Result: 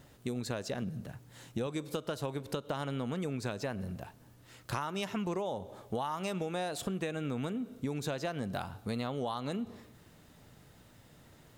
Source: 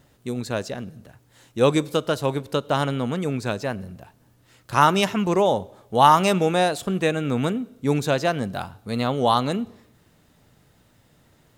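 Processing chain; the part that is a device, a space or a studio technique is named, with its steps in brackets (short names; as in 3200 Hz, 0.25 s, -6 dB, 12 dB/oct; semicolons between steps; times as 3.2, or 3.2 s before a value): 0.82–1.67 bell 160 Hz +7 dB 0.93 oct; serial compression, peaks first (compressor 6:1, threshold -27 dBFS, peak gain reduction 16.5 dB; compressor 2.5:1, threshold -34 dBFS, peak gain reduction 7.5 dB)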